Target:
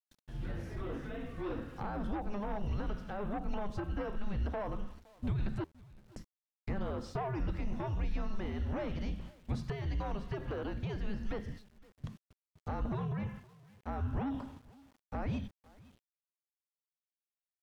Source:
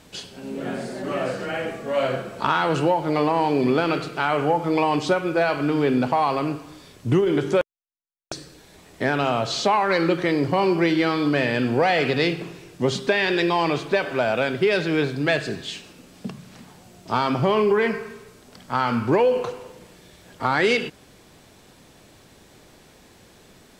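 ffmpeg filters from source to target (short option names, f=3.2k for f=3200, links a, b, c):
-filter_complex "[0:a]lowpass=f=1.2k:p=1,afreqshift=-300,acrossover=split=610[a][b];[a]asoftclip=type=tanh:threshold=-22.5dB[c];[b]acompressor=threshold=-46dB:ratio=8[d];[c][d]amix=inputs=2:normalize=0,aeval=exprs='val(0)+0.00224*(sin(2*PI*60*n/s)+sin(2*PI*2*60*n/s)/2+sin(2*PI*3*60*n/s)/3+sin(2*PI*4*60*n/s)/4+sin(2*PI*5*60*n/s)/5)':c=same,adynamicequalizer=threshold=0.01:dfrequency=110:dqfactor=0.94:tfrequency=110:tqfactor=0.94:attack=5:release=100:ratio=0.375:range=3:mode=cutabove:tftype=bell,agate=range=-48dB:threshold=-40dB:ratio=16:detection=peak,equalizer=f=320:w=0.6:g=-6,aecho=1:1:695:0.0708,aeval=exprs='val(0)*gte(abs(val(0)),0.00141)':c=same,asetrate=59535,aresample=44100,volume=-4.5dB"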